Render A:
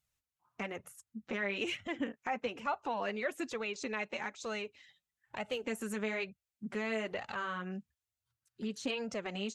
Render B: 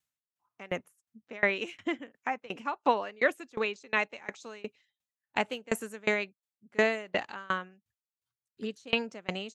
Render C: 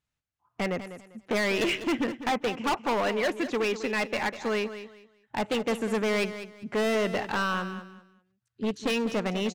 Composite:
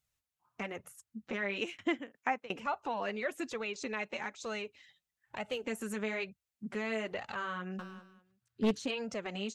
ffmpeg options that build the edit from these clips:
ffmpeg -i take0.wav -i take1.wav -i take2.wav -filter_complex "[0:a]asplit=3[link_01][link_02][link_03];[link_01]atrim=end=1.612[link_04];[1:a]atrim=start=1.608:end=2.572[link_05];[link_02]atrim=start=2.568:end=7.792[link_06];[2:a]atrim=start=7.788:end=8.792[link_07];[link_03]atrim=start=8.788[link_08];[link_04][link_05]acrossfade=duration=0.004:curve1=hsin:curve2=hsin[link_09];[link_09][link_06]acrossfade=duration=0.004:curve1=hsin:curve2=hsin[link_10];[link_10][link_07]acrossfade=duration=0.004:curve1=hsin:curve2=hsin[link_11];[link_11][link_08]acrossfade=duration=0.004:curve1=hsin:curve2=hsin" out.wav

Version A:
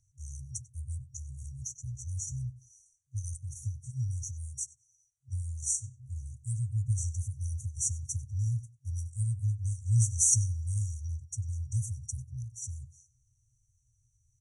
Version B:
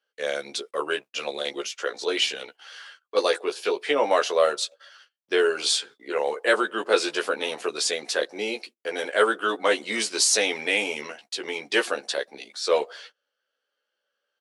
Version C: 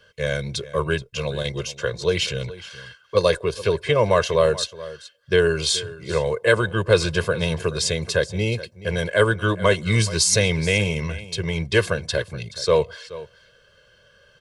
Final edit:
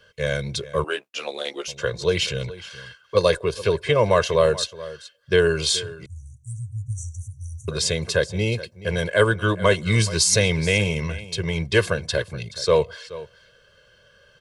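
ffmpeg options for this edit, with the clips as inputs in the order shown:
ffmpeg -i take0.wav -i take1.wav -i take2.wav -filter_complex "[2:a]asplit=3[link_01][link_02][link_03];[link_01]atrim=end=0.842[link_04];[1:a]atrim=start=0.838:end=1.682[link_05];[link_02]atrim=start=1.678:end=6.062[link_06];[0:a]atrim=start=6.058:end=7.682[link_07];[link_03]atrim=start=7.678[link_08];[link_04][link_05]acrossfade=duration=0.004:curve1=hsin:curve2=hsin[link_09];[link_09][link_06]acrossfade=duration=0.004:curve1=hsin:curve2=hsin[link_10];[link_10][link_07]acrossfade=duration=0.004:curve1=hsin:curve2=hsin[link_11];[link_11][link_08]acrossfade=duration=0.004:curve1=hsin:curve2=hsin" out.wav

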